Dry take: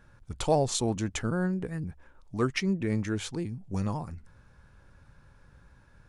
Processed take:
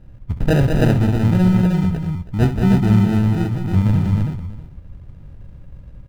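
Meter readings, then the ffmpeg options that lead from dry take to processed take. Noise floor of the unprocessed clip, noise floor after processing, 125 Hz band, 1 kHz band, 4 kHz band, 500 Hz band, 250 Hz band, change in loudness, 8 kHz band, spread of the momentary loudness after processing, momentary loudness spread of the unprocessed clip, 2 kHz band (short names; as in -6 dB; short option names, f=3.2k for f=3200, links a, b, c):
-59 dBFS, -40 dBFS, +18.0 dB, +5.5 dB, +2.0 dB, +6.5 dB, +14.5 dB, +13.5 dB, n/a, 10 LU, 14 LU, +8.0 dB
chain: -filter_complex "[0:a]afftfilt=real='re*(1-between(b*sr/4096,2300,5900))':imag='im*(1-between(b*sr/4096,2300,5900))':win_size=4096:overlap=0.75,acrusher=samples=40:mix=1:aa=0.000001,bass=f=250:g=14,treble=f=4k:g=-9,asplit=2[a][b];[b]aecho=0:1:66|196|312|637:0.266|0.501|0.668|0.106[c];[a][c]amix=inputs=2:normalize=0,volume=3dB"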